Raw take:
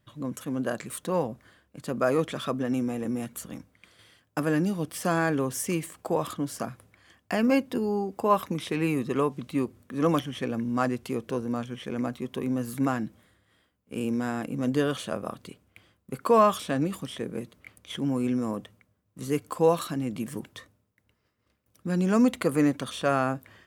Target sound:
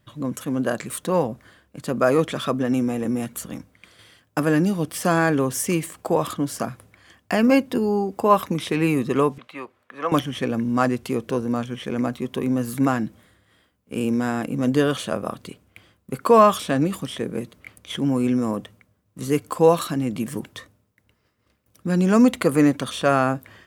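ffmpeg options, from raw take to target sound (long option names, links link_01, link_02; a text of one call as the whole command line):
ffmpeg -i in.wav -filter_complex "[0:a]asettb=1/sr,asplit=3[link_01][link_02][link_03];[link_01]atrim=end=9.384[link_04];[link_02]atrim=start=9.38:end=10.12,asetpts=PTS-STARTPTS,afade=type=in:duration=0.004:curve=qsin,afade=type=out:start_time=0.736:duration=0.004:curve=qsin,acrossover=split=580 3400:gain=0.0708 1 0.141[link_05][link_06][link_07];[link_05][link_06][link_07]amix=inputs=3:normalize=0[link_08];[link_03]atrim=start=10.116[link_09];[link_04][link_08]acrossfade=duration=0.004:curve1=hsin:curve2=qsin[link_10];[link_10][link_09]acrossfade=duration=0.004:curve1=qsin:curve2=hsin,volume=6dB" out.wav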